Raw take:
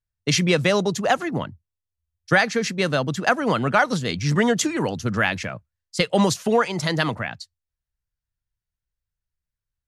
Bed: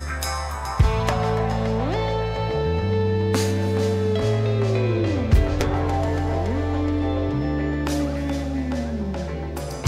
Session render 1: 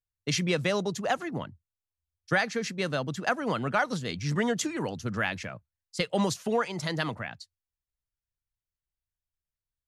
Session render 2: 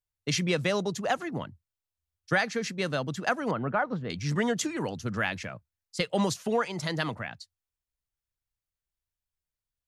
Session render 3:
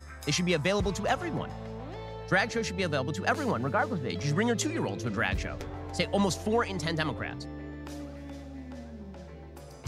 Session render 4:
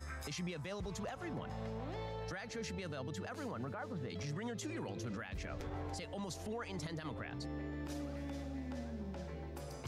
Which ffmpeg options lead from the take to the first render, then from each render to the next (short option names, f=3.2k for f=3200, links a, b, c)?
-af "volume=-8dB"
-filter_complex "[0:a]asettb=1/sr,asplit=3[a][b][c];[a]atrim=end=3.514[d];[b]atrim=start=3.51:end=4.1,asetpts=PTS-STARTPTS,afade=t=in:d=0.004:c=qsin,afade=t=out:st=0.586:d=0.004:c=qsin,lowpass=1.5k[e];[c]atrim=start=4.096[f];[d][e]acrossfade=d=0.004:c1=hsin:c2=qsin[g];[g][f]acrossfade=d=0.004:c1=qsin:c2=hsin"
-filter_complex "[1:a]volume=-17dB[a];[0:a][a]amix=inputs=2:normalize=0"
-af "acompressor=threshold=-38dB:ratio=4,alimiter=level_in=10dB:limit=-24dB:level=0:latency=1:release=29,volume=-10dB"